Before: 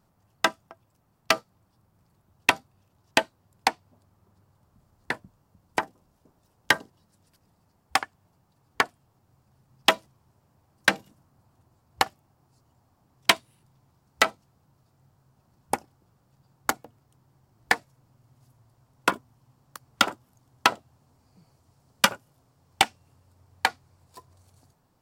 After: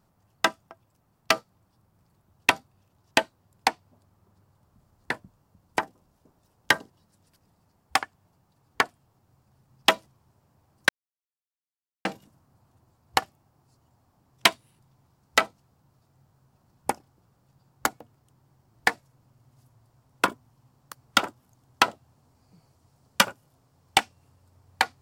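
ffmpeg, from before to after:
ffmpeg -i in.wav -filter_complex "[0:a]asplit=2[link_01][link_02];[link_01]atrim=end=10.89,asetpts=PTS-STARTPTS,afade=type=out:start_time=10.886:duration=0.004:curve=hsin,apad=pad_dur=1.16[link_03];[link_02]atrim=start=10.89,asetpts=PTS-STARTPTS,afade=type=in:duration=0.004:curve=hsin[link_04];[link_03][link_04]concat=n=2:v=0:a=1" out.wav

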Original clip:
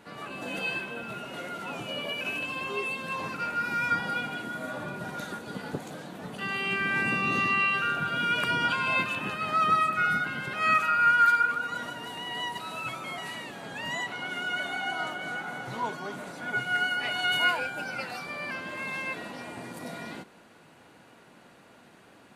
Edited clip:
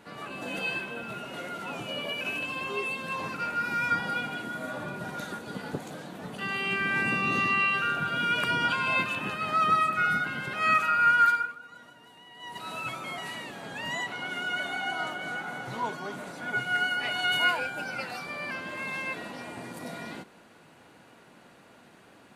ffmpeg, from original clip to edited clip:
ffmpeg -i in.wav -filter_complex "[0:a]asplit=3[link_01][link_02][link_03];[link_01]atrim=end=11.54,asetpts=PTS-STARTPTS,afade=type=out:start_time=11.24:duration=0.3:silence=0.177828[link_04];[link_02]atrim=start=11.54:end=12.39,asetpts=PTS-STARTPTS,volume=-15dB[link_05];[link_03]atrim=start=12.39,asetpts=PTS-STARTPTS,afade=type=in:duration=0.3:silence=0.177828[link_06];[link_04][link_05][link_06]concat=n=3:v=0:a=1" out.wav

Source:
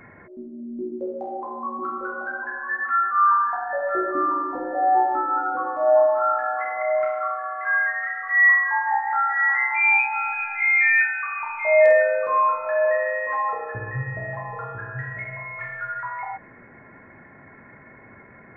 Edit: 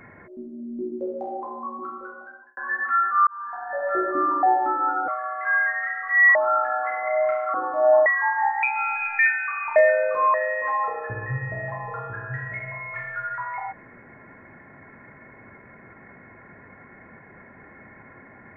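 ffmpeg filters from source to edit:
ffmpeg -i in.wav -filter_complex "[0:a]asplit=12[link_01][link_02][link_03][link_04][link_05][link_06][link_07][link_08][link_09][link_10][link_11][link_12];[link_01]atrim=end=2.57,asetpts=PTS-STARTPTS,afade=type=out:start_time=1.29:duration=1.28[link_13];[link_02]atrim=start=2.57:end=3.27,asetpts=PTS-STARTPTS,afade=type=in:duration=0.004:curve=hsin,afade=type=out:start_time=0.696:duration=0.004:curve=hsin[link_14];[link_03]atrim=start=3.27:end=4.432,asetpts=PTS-STARTPTS,afade=type=in:duration=0.65[link_15];[link_04]atrim=start=4.918:end=5.572[link_16];[link_05]atrim=start=7.278:end=8.552[link_17];[link_06]atrim=start=6.088:end=7.282[link_18];[link_07]atrim=start=5.568:end=6.092[link_19];[link_08]atrim=start=8.548:end=9.122[link_20];[link_09]atrim=start=9.998:end=10.562[link_21];[link_10]atrim=start=10.938:end=11.512[link_22];[link_11]atrim=start=11.878:end=12.462[link_23];[link_12]atrim=start=12.988[link_24];[link_13][link_14][link_15]concat=n=3:v=0:a=1[link_25];[link_25][link_16]acrossfade=duration=0.004:curve1=hsin:curve2=hsin[link_26];[link_26][link_17]acrossfade=duration=0.004:curve1=hsin:curve2=hsin[link_27];[link_27][link_18]acrossfade=duration=0.004:curve1=hsin:curve2=hsin[link_28];[link_28][link_19]acrossfade=duration=0.004:curve1=hsin:curve2=hsin[link_29];[link_29][link_20]acrossfade=duration=0.004:curve1=hsin:curve2=hsin[link_30];[link_30][link_21]acrossfade=duration=0.004:curve1=hsin:curve2=hsin[link_31];[link_31][link_22]acrossfade=duration=0.004:curve1=hsin:curve2=hsin[link_32];[link_32][link_23]acrossfade=duration=0.004:curve1=hsin:curve2=hsin[link_33];[link_33][link_24]acrossfade=duration=0.004:curve1=hsin:curve2=hsin" out.wav

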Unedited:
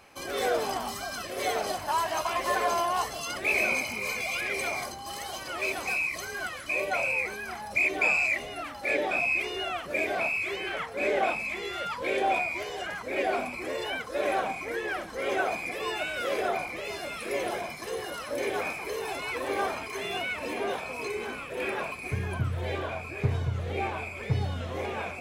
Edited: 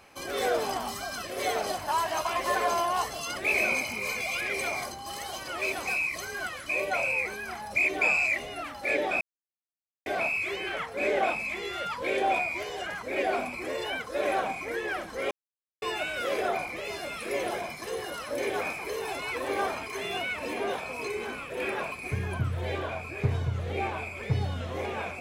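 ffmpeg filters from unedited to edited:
ffmpeg -i in.wav -filter_complex "[0:a]asplit=5[link_01][link_02][link_03][link_04][link_05];[link_01]atrim=end=9.21,asetpts=PTS-STARTPTS,afade=type=out:start_time=9.206:duration=0.004:curve=hsin[link_06];[link_02]atrim=start=9.21:end=10.06,asetpts=PTS-STARTPTS,volume=0[link_07];[link_03]atrim=start=10.06:end=15.31,asetpts=PTS-STARTPTS,afade=type=in:duration=0.004:curve=hsin,afade=type=out:start_time=5.246:duration=0.004:curve=hsin[link_08];[link_04]atrim=start=15.31:end=15.82,asetpts=PTS-STARTPTS,volume=0[link_09];[link_05]atrim=start=15.82,asetpts=PTS-STARTPTS,afade=type=in:duration=0.004:curve=hsin[link_10];[link_06][link_07][link_08][link_09][link_10]concat=n=5:v=0:a=1" out.wav

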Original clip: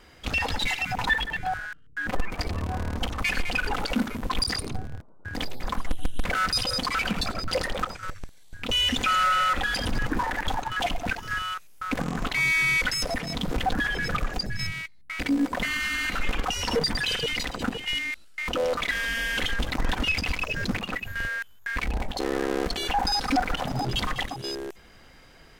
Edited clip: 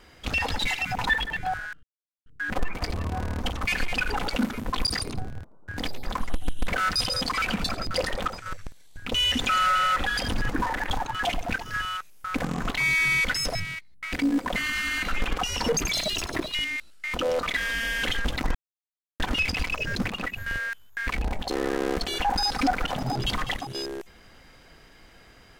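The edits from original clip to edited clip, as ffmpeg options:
ffmpeg -i in.wav -filter_complex "[0:a]asplit=6[link_01][link_02][link_03][link_04][link_05][link_06];[link_01]atrim=end=1.83,asetpts=PTS-STARTPTS,afade=type=out:start_time=1.826:duration=0.004:curve=hsin,apad=pad_dur=0.43[link_07];[link_02]atrim=start=1.83:end=13.122,asetpts=PTS-STARTPTS,afade=type=in:duration=0.004:curve=hsin[link_08];[link_03]atrim=start=14.618:end=16.844[link_09];[link_04]atrim=start=16.84:end=17.89,asetpts=PTS-STARTPTS,asetrate=59535,aresample=44100[link_10];[link_05]atrim=start=17.886:end=19.89,asetpts=PTS-STARTPTS,afade=type=out:start_time=2:duration=0.004:curve=hsin,apad=pad_dur=0.65[link_11];[link_06]atrim=start=19.89,asetpts=PTS-STARTPTS,afade=type=in:duration=0.004:curve=hsin[link_12];[link_07][link_08]concat=n=2:v=0:a=1[link_13];[link_13][link_09]acrossfade=duration=0.004:curve1=hsin:curve2=hsin[link_14];[link_14][link_10]acrossfade=duration=0.004:curve1=hsin:curve2=hsin[link_15];[link_11][link_12]concat=n=2:v=0:a=1[link_16];[link_15][link_16]acrossfade=duration=0.004:curve1=hsin:curve2=hsin" out.wav

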